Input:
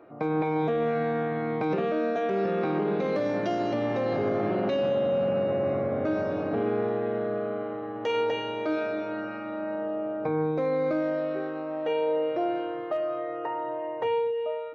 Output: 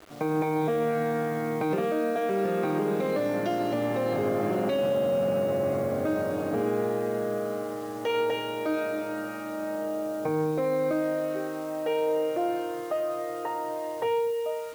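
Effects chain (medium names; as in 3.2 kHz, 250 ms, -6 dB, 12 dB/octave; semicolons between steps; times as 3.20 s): word length cut 8-bit, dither none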